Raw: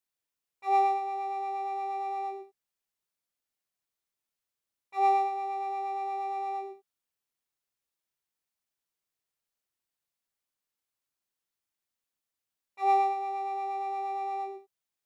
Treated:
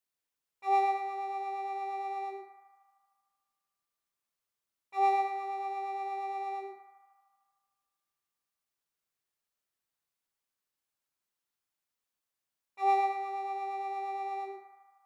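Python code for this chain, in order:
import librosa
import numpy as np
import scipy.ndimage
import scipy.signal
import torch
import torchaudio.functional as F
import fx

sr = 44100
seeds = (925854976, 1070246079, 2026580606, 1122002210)

y = fx.echo_banded(x, sr, ms=76, feedback_pct=82, hz=1200.0, wet_db=-6)
y = y * 10.0 ** (-1.0 / 20.0)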